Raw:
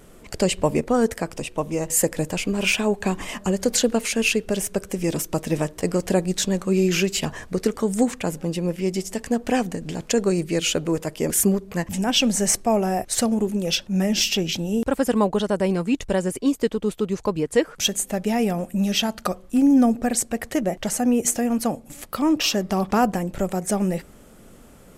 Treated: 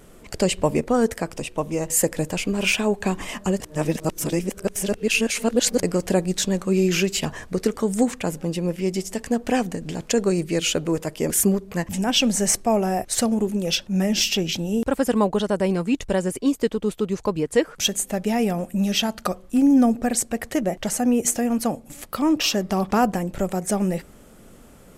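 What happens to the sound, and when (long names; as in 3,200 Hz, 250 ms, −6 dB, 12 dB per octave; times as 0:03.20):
0:03.60–0:05.83: reverse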